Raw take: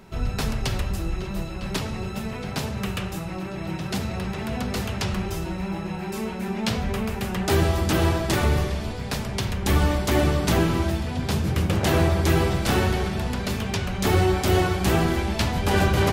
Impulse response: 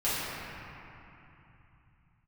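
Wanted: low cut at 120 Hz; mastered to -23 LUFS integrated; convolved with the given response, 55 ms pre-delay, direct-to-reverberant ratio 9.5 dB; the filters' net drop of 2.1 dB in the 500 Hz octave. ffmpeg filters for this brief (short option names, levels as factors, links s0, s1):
-filter_complex "[0:a]highpass=120,equalizer=f=500:t=o:g=-3,asplit=2[s0][s1];[1:a]atrim=start_sample=2205,adelay=55[s2];[s1][s2]afir=irnorm=-1:irlink=0,volume=0.0891[s3];[s0][s3]amix=inputs=2:normalize=0,volume=1.41"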